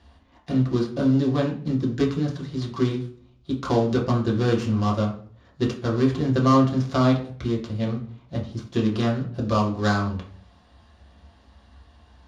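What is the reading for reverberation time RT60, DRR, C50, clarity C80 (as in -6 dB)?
0.50 s, -3.0 dB, 8.5 dB, 13.0 dB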